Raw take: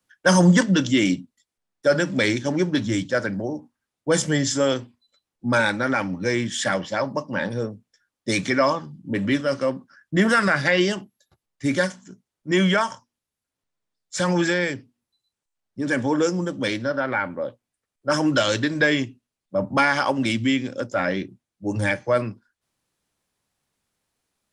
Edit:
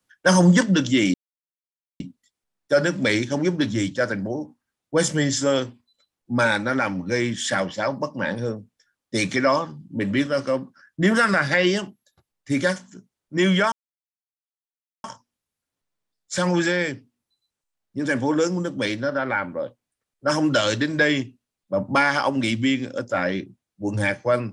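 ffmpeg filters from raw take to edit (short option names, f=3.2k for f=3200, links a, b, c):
-filter_complex "[0:a]asplit=3[a][b][c];[a]atrim=end=1.14,asetpts=PTS-STARTPTS,afade=t=out:st=1.136:d=0.004:c=hsin,apad=pad_dur=0.86[d];[b]atrim=start=1.14:end=12.86,asetpts=PTS-STARTPTS,afade=t=in:d=0.004:c=hsin,afade=t=out:st=11.716:d=0.004:c=hsin,apad=pad_dur=1.32[e];[c]atrim=start=12.86,asetpts=PTS-STARTPTS,afade=t=in:d=0.004:c=hsin[f];[d][e][f]concat=n=3:v=0:a=1"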